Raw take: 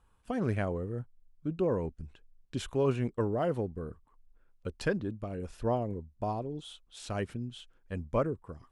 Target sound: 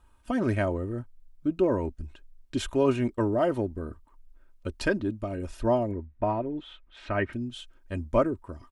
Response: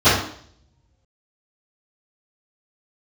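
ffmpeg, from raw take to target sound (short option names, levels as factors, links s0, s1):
-filter_complex "[0:a]asettb=1/sr,asplit=3[s0][s1][s2];[s0]atrim=end=5.914[s3];[s1]atrim=start=5.91:end=7.33,asetpts=PTS-STARTPTS,afade=t=in:d=0.004:c=qsin,afade=t=out:st=1.416:d=0.004:c=qsin,lowpass=f=2000:t=q:w=2.1[s4];[s2]atrim=start=7.326[s5];[s3][s4]acrossfade=d=0.004:c1=hsin:c2=qsin[s6];[s6][s5]acrossfade=d=0.004:c1=qsin:c2=hsin,aecho=1:1:3.2:0.61,volume=1.68"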